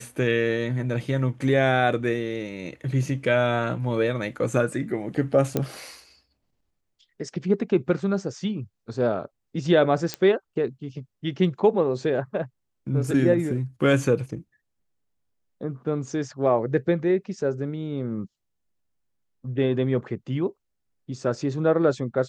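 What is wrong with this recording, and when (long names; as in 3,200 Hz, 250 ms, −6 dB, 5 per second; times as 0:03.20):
0:05.57: click −10 dBFS
0:10.14: click −11 dBFS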